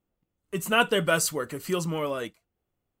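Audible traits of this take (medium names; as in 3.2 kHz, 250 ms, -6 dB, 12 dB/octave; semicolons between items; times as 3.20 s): noise floor -83 dBFS; spectral tilt -4.0 dB/octave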